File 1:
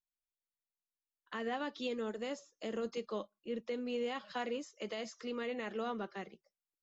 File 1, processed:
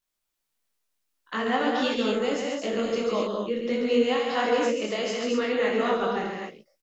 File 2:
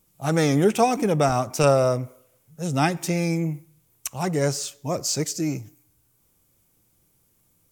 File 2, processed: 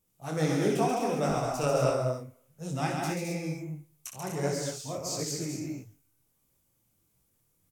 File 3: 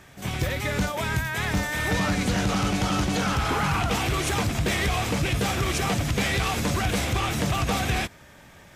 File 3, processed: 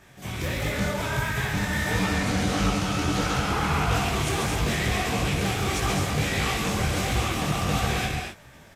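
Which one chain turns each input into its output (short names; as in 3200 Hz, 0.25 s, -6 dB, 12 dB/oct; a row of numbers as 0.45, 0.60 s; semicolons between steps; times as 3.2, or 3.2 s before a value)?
tapped delay 62/136/213/252 ms -7/-4.5/-5.5/-7 dB; detuned doubles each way 53 cents; normalise peaks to -12 dBFS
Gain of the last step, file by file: +15.0, -6.5, 0.0 dB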